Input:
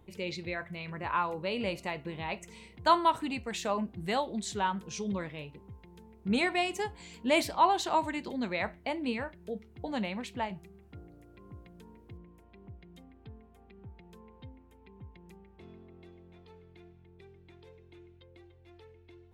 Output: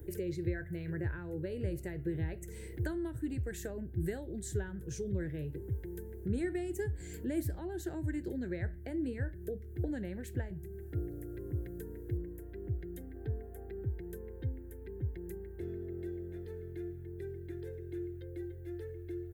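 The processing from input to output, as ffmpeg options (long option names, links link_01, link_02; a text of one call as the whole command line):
ffmpeg -i in.wav -filter_complex "[0:a]asettb=1/sr,asplit=3[link_01][link_02][link_03];[link_01]atrim=end=13.154[link_04];[link_02]atrim=start=13.15:end=13.82,asetpts=PTS-STARTPTS,afade=type=in:duration=0.004:curve=qsin,afade=type=out:start_time=0.666:duration=0.004:curve=qsin,equalizer=frequency=730:width=1.5:gain=8[link_05];[link_03]atrim=start=13.816[link_06];[link_04][link_05]acrossfade=duration=0.004:curve1=hsin:curve2=qsin[link_07];[link_07][link_06]acrossfade=duration=0.004:curve1=qsin:curve2=hsin,acrossover=split=170[link_08][link_09];[link_09]acompressor=threshold=-49dB:ratio=4[link_10];[link_08][link_10]amix=inputs=2:normalize=0,firequalizer=gain_entry='entry(120,0);entry(210,-16);entry(330,3);entry(630,-12);entry(1100,-29);entry(1600,-1);entry(2400,-20);entry(4400,-17);entry(7100,-6);entry(13000,7)':delay=0.05:min_phase=1,volume=13.5dB" out.wav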